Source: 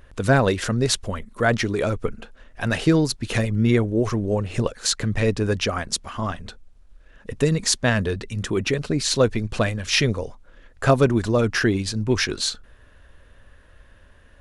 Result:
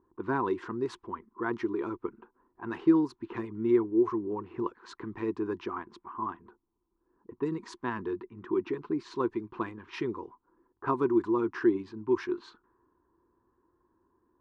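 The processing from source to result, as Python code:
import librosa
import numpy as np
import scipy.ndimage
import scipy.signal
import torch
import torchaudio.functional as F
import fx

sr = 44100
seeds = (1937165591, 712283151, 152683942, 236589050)

y = fx.env_lowpass(x, sr, base_hz=620.0, full_db=-16.5)
y = fx.double_bandpass(y, sr, hz=590.0, octaves=1.5)
y = F.gain(torch.from_numpy(y), 1.5).numpy()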